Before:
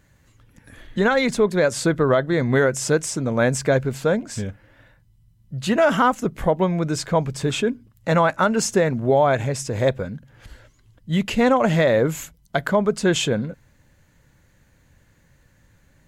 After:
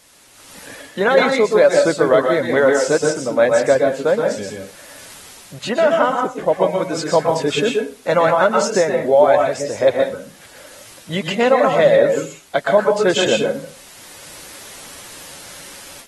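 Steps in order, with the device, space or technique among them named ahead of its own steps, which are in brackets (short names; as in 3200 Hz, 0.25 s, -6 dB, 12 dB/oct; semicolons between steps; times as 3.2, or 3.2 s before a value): reverb removal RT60 0.66 s; filmed off a television (BPF 290–7400 Hz; bell 570 Hz +8 dB 0.35 oct; reverb RT60 0.35 s, pre-delay 0.115 s, DRR 1.5 dB; white noise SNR 30 dB; AGC gain up to 14 dB; gain -1.5 dB; AAC 32 kbps 48000 Hz)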